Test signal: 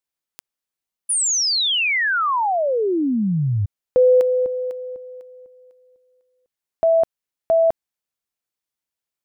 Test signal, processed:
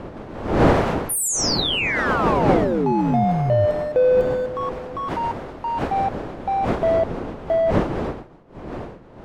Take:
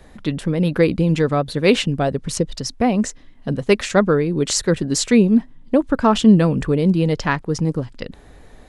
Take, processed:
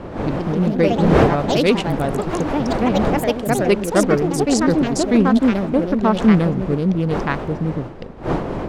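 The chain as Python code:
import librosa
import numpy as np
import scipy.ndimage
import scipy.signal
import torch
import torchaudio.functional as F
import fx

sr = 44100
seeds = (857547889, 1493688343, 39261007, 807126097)

y = fx.wiener(x, sr, points=41)
y = fx.dmg_wind(y, sr, seeds[0], corner_hz=510.0, level_db=-26.0)
y = fx.echo_pitch(y, sr, ms=169, semitones=3, count=3, db_per_echo=-3.0)
y = y * librosa.db_to_amplitude(-1.5)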